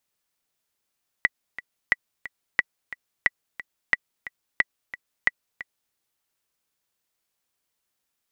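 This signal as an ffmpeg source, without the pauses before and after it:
-f lavfi -i "aevalsrc='pow(10,(-5-16*gte(mod(t,2*60/179),60/179))/20)*sin(2*PI*1960*mod(t,60/179))*exp(-6.91*mod(t,60/179)/0.03)':d=4.69:s=44100"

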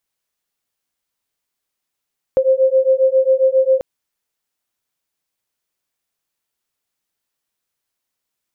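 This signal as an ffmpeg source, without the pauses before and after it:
-f lavfi -i "aevalsrc='0.2*(sin(2*PI*523*t)+sin(2*PI*530.4*t))':d=1.44:s=44100"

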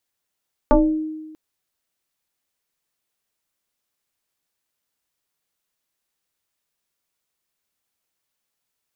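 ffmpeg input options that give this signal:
-f lavfi -i "aevalsrc='0.376*pow(10,-3*t/1.26)*sin(2*PI*312*t+2.6*pow(10,-3*t/0.46)*sin(2*PI*0.91*312*t))':d=0.64:s=44100"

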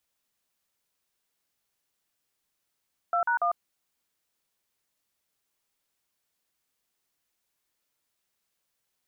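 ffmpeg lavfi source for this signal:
-f lavfi -i "aevalsrc='0.0562*clip(min(mod(t,0.143),0.1-mod(t,0.143))/0.002,0,1)*(eq(floor(t/0.143),0)*(sin(2*PI*697*mod(t,0.143))+sin(2*PI*1336*mod(t,0.143)))+eq(floor(t/0.143),1)*(sin(2*PI*941*mod(t,0.143))+sin(2*PI*1477*mod(t,0.143)))+eq(floor(t/0.143),2)*(sin(2*PI*697*mod(t,0.143))+sin(2*PI*1209*mod(t,0.143))))':d=0.429:s=44100"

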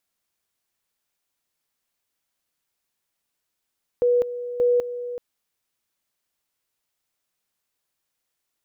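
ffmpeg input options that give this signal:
-f lavfi -i "aevalsrc='pow(10,(-15.5-12.5*gte(mod(t,0.58),0.2))/20)*sin(2*PI*487*t)':d=1.16:s=44100"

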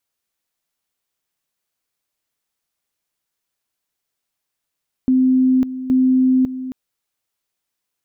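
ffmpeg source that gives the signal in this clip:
-f lavfi -i "aevalsrc='pow(10,(-11-13*gte(mod(t,0.82),0.55))/20)*sin(2*PI*258*t)':d=1.64:s=44100"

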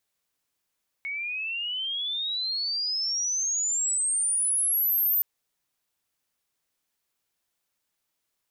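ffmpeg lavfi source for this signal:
-f lavfi -i "aevalsrc='pow(10,(-29.5+9*t/4.17)/20)*sin(2*PI*2200*4.17/log(14000/2200)*(exp(log(14000/2200)*t/4.17)-1))':d=4.17:s=44100"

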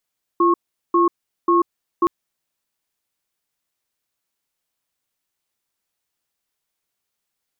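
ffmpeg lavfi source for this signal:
-f lavfi -i "aevalsrc='0.178*(sin(2*PI*344*t)+sin(2*PI*1090*t))*clip(min(mod(t,0.54),0.14-mod(t,0.54))/0.005,0,1)':d=1.67:s=44100"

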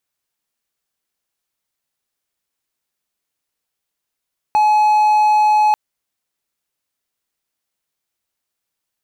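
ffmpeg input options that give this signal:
-f lavfi -i "aevalsrc='0.398*(1-4*abs(mod(849*t+0.25,1)-0.5))':d=1.19:s=44100"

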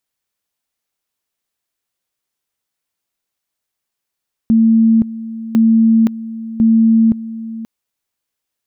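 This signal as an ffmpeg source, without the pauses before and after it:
-f lavfi -i "aevalsrc='pow(10,(-7-16*gte(mod(t,1.05),0.52))/20)*sin(2*PI*225*t)':d=3.15:s=44100"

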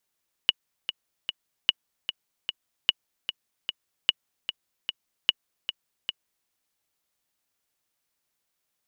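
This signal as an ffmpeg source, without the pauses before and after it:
-f lavfi -i "aevalsrc='pow(10,(-5.5-10*gte(mod(t,3*60/150),60/150))/20)*sin(2*PI*2920*mod(t,60/150))*exp(-6.91*mod(t,60/150)/0.03)':d=6:s=44100"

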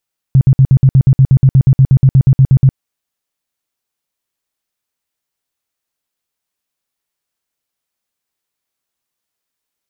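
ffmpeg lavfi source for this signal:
-f lavfi -i "aevalsrc='0.708*sin(2*PI*133*mod(t,0.12))*lt(mod(t,0.12),8/133)':d=2.4:s=44100"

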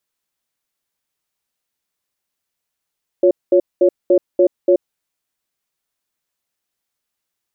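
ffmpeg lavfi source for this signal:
-f lavfi -i "aevalsrc='0.282*(sin(2*PI*356*t)+sin(2*PI*557*t))*clip(min(mod(t,0.29),0.08-mod(t,0.29))/0.005,0,1)':d=1.6:s=44100"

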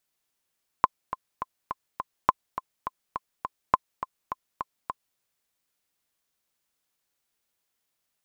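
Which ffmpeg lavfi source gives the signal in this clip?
-f lavfi -i "aevalsrc='pow(10,(-4-12.5*gte(mod(t,5*60/207),60/207))/20)*sin(2*PI*1040*mod(t,60/207))*exp(-6.91*mod(t,60/207)/0.03)':d=4.34:s=44100"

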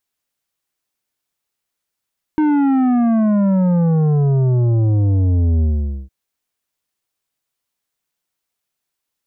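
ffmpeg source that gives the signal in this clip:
-f lavfi -i "aevalsrc='0.224*clip((3.71-t)/0.47,0,1)*tanh(2.99*sin(2*PI*310*3.71/log(65/310)*(exp(log(65/310)*t/3.71)-1)))/tanh(2.99)':d=3.71:s=44100"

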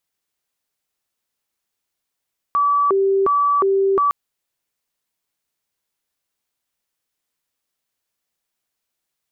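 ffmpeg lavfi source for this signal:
-f lavfi -i "aevalsrc='0.211*sin(2*PI*(770*t+380/1.4*(0.5-abs(mod(1.4*t,1)-0.5))))':d=1.56:s=44100"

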